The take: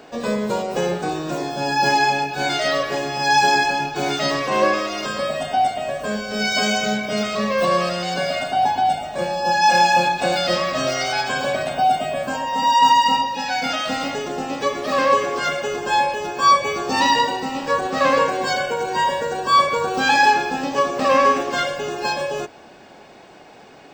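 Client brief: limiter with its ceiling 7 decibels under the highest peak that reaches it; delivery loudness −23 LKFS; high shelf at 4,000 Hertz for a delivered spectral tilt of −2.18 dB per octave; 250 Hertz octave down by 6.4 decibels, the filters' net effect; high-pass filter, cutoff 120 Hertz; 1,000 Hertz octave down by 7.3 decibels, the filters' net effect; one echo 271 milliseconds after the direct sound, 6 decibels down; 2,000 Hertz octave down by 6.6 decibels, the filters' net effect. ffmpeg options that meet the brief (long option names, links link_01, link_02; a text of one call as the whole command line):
ffmpeg -i in.wav -af "highpass=120,equalizer=frequency=250:width_type=o:gain=-7.5,equalizer=frequency=1000:width_type=o:gain=-7.5,equalizer=frequency=2000:width_type=o:gain=-7,highshelf=frequency=4000:gain=4.5,alimiter=limit=-16dB:level=0:latency=1,aecho=1:1:271:0.501,volume=1.5dB" out.wav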